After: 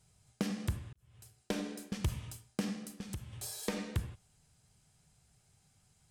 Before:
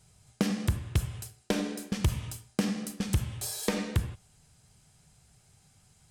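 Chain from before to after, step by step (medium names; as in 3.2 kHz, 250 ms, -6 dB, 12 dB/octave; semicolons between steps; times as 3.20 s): 0.93–1.40 s: fade in quadratic; 2.74–3.33 s: compression 2.5:1, threshold -35 dBFS, peak gain reduction 9.5 dB; trim -7 dB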